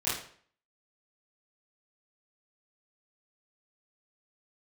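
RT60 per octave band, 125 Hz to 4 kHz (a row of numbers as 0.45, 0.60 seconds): 0.50, 0.55, 0.55, 0.50, 0.50, 0.45 seconds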